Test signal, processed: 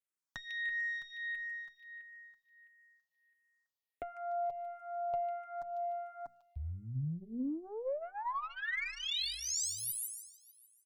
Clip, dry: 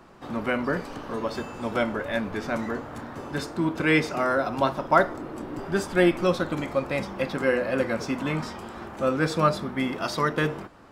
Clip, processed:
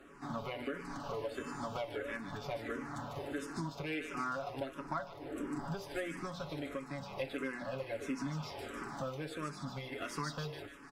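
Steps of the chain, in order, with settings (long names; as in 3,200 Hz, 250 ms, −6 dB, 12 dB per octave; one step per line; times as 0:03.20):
mains-hum notches 60/120/180/240 Hz
comb filter 7.1 ms, depth 63%
downward compressor 12 to 1, threshold −30 dBFS
tube saturation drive 24 dB, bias 0.45
on a send: delay with a high-pass on its return 149 ms, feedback 52%, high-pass 2,500 Hz, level −3.5 dB
on the sum: frequency shifter mixed with the dry sound −1.5 Hz
level −1 dB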